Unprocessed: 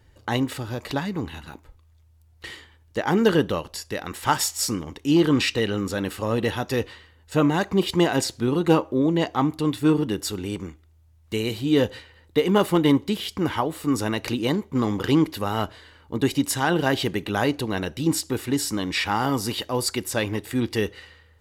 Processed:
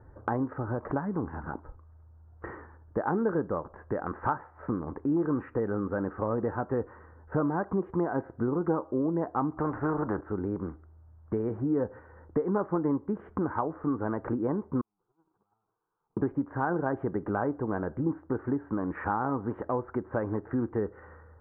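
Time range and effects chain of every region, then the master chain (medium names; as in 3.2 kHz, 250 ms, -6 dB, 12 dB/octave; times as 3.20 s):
9.57–10.21 s: low-pass 1.8 kHz 6 dB/octave + spectrum-flattening compressor 2:1
14.81–16.17 s: one-bit comparator + static phaser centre 390 Hz, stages 8 + gate -22 dBFS, range -57 dB
whole clip: steep low-pass 1.5 kHz 48 dB/octave; bass shelf 190 Hz -5 dB; compression 3:1, threshold -37 dBFS; trim +7 dB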